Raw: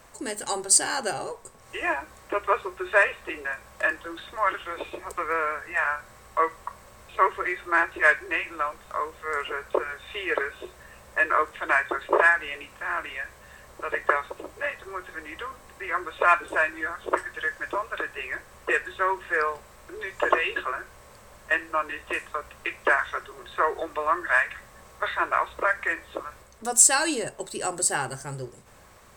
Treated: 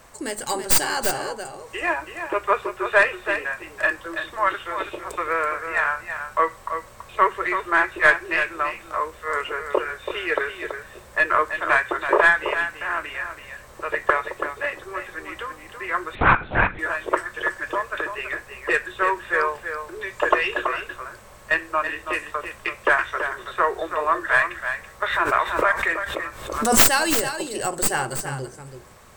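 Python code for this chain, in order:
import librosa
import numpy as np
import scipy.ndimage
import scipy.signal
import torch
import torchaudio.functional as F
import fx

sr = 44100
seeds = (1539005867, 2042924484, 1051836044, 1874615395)

y = fx.tracing_dist(x, sr, depth_ms=0.11)
y = y + 10.0 ** (-8.5 / 20.0) * np.pad(y, (int(330 * sr / 1000.0), 0))[:len(y)]
y = fx.lpc_vocoder(y, sr, seeds[0], excitation='whisper', order=8, at=(16.15, 16.79))
y = fx.pre_swell(y, sr, db_per_s=65.0, at=(25.04, 26.83))
y = y * 10.0 ** (3.0 / 20.0)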